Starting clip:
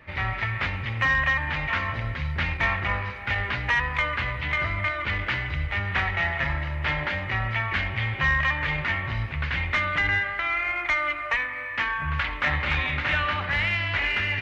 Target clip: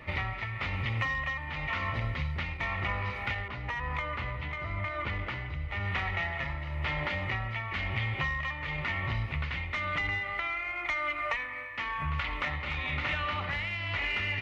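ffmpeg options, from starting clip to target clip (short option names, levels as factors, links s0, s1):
-filter_complex "[0:a]tremolo=f=0.98:d=0.74,acompressor=threshold=0.0224:ratio=6,bandreject=f=1600:w=5.1,asettb=1/sr,asplit=3[s0][s1][s2];[s0]atrim=end=3.484[s3];[s1]atrim=start=3.48:end=5.8,asetpts=PTS-STARTPTS,afade=t=in:d=0.004:c=qsin,afade=t=out:st=2.316:d=0.004:c=qsin,adynamicequalizer=threshold=0.00251:dfrequency=1700:dqfactor=0.7:tfrequency=1700:tqfactor=0.7:attack=5:release=100:ratio=0.375:range=3:mode=cutabove:tftype=highshelf[s4];[s2]atrim=start=5.796[s5];[s3][s4]acrossfade=d=0.004:c1=hsin:c2=qsin[s6];[s6][s5]acrossfade=d=0.004:c1=qsin:c2=hsin,volume=1.68"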